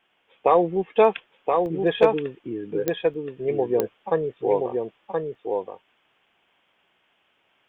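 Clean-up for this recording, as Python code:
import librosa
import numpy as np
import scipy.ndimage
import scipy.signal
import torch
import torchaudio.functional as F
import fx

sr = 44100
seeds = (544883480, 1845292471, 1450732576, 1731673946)

y = fx.fix_declip(x, sr, threshold_db=-6.0)
y = fx.fix_declick_ar(y, sr, threshold=10.0)
y = fx.fix_interpolate(y, sr, at_s=(1.66, 3.14, 5.35), length_ms=1.5)
y = fx.fix_echo_inverse(y, sr, delay_ms=1024, level_db=-4.0)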